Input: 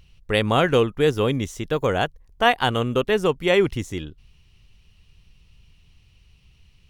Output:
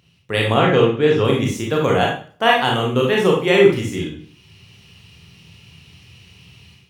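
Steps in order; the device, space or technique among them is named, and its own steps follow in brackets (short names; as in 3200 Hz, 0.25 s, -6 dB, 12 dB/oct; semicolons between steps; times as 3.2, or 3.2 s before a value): 0.54–1.25 air absorption 110 m; far laptop microphone (reverb RT60 0.45 s, pre-delay 26 ms, DRR -2 dB; HPF 100 Hz 24 dB/oct; AGC gain up to 12 dB); gain -1 dB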